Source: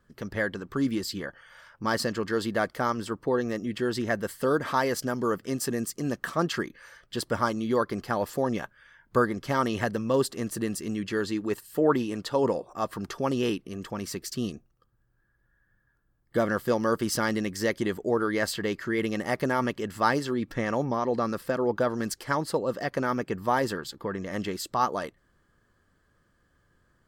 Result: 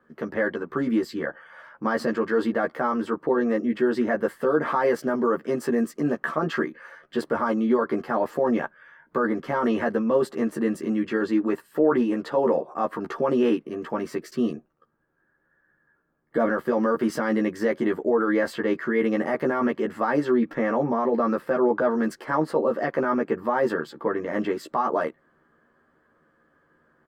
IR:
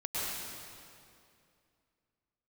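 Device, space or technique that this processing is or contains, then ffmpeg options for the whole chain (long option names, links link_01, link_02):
DJ mixer with the lows and highs turned down: -filter_complex "[0:a]acrossover=split=180 2100:gain=0.0794 1 0.112[link_01][link_02][link_03];[link_01][link_02][link_03]amix=inputs=3:normalize=0,alimiter=limit=-21dB:level=0:latency=1:release=16,asplit=2[link_04][link_05];[link_05]adelay=13,volume=-2dB[link_06];[link_04][link_06]amix=inputs=2:normalize=0,volume=6dB"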